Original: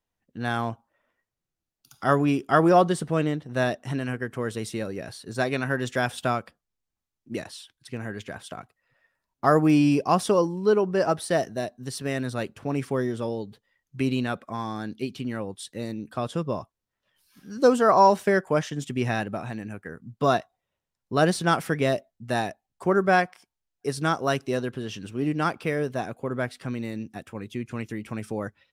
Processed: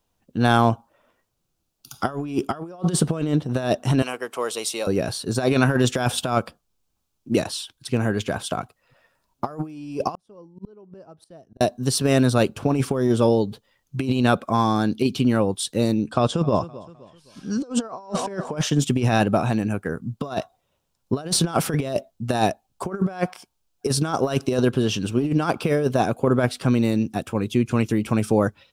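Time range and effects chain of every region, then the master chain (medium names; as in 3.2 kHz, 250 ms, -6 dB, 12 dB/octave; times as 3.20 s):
4.02–4.87 s: high-pass 710 Hz + peaking EQ 1.6 kHz -8.5 dB 0.41 oct
10.15–11.61 s: inverted gate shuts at -25 dBFS, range -36 dB + tilt EQ -2 dB/octave + slow attack 317 ms
16.05–18.57 s: low-pass 8.6 kHz 24 dB/octave + feedback delay 258 ms, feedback 38%, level -21.5 dB
whole clip: peaking EQ 1.9 kHz -9.5 dB 0.47 oct; compressor with a negative ratio -28 dBFS, ratio -0.5; trim +8 dB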